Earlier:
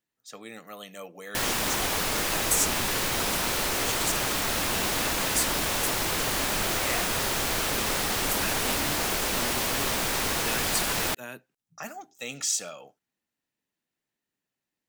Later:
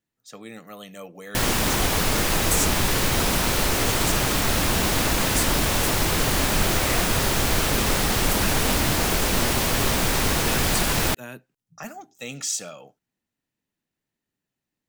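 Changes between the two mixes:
background +3.5 dB; master: add bass shelf 240 Hz +10 dB

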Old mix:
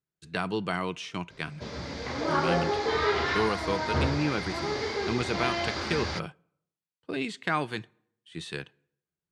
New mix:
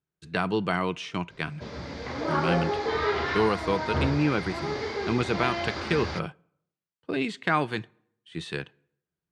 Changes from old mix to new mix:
speech +4.0 dB; master: add treble shelf 4.9 kHz -8 dB

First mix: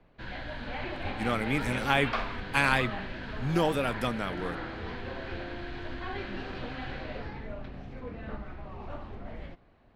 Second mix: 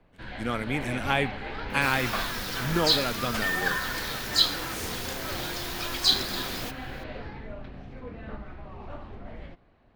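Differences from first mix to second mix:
speech: entry -0.80 s; second sound: unmuted

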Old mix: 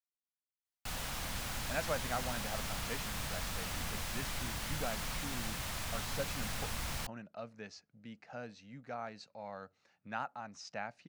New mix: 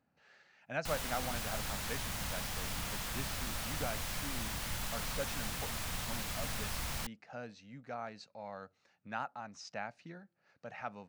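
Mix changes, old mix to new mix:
speech: entry -1.00 s; background: add treble shelf 11 kHz +3.5 dB

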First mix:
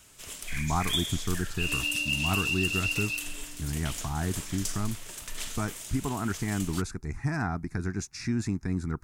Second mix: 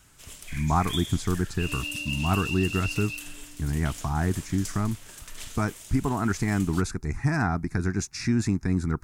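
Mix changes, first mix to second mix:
speech +5.0 dB; first sound -4.0 dB

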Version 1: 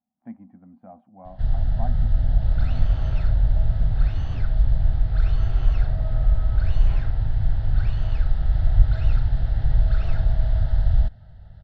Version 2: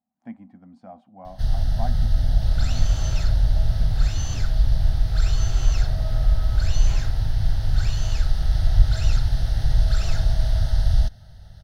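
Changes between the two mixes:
speech: remove distance through air 300 m; master: remove distance through air 430 m

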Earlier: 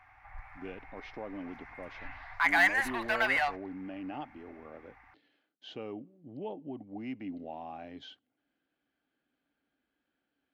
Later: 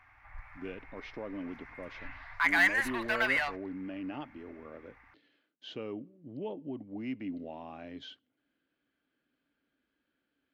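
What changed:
speech: send +9.5 dB; master: add peaking EQ 770 Hz -9 dB 0.32 oct

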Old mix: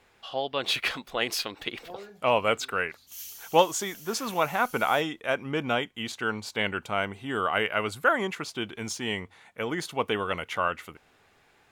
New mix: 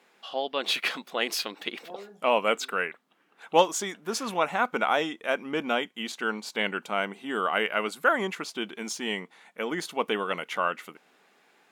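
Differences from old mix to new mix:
background: add low-pass 1.5 kHz 24 dB/octave; master: add brick-wall FIR high-pass 160 Hz

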